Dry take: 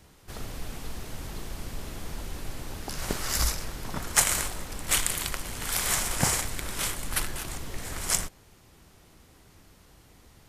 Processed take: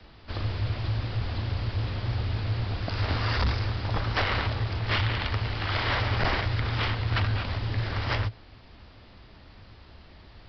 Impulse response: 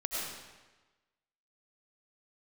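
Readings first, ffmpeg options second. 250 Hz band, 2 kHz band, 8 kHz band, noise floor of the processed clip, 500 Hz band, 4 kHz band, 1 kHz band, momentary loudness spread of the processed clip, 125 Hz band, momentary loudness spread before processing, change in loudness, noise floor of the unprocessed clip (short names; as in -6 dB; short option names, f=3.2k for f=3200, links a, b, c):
+3.0 dB, +3.5 dB, under -30 dB, -51 dBFS, +4.5 dB, +0.5 dB, +4.5 dB, 4 LU, +12.0 dB, 15 LU, +1.0 dB, -57 dBFS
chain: -filter_complex "[0:a]afreqshift=-120,acrossover=split=3700[a][b];[b]acompressor=threshold=-38dB:ratio=4:attack=1:release=60[c];[a][c]amix=inputs=2:normalize=0,aresample=11025,asoftclip=type=hard:threshold=-27dB,aresample=44100,volume=6dB"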